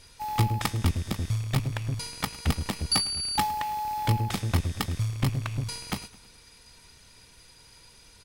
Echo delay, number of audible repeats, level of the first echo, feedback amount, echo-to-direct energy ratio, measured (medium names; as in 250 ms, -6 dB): 106 ms, 3, -20.0 dB, 50%, -19.0 dB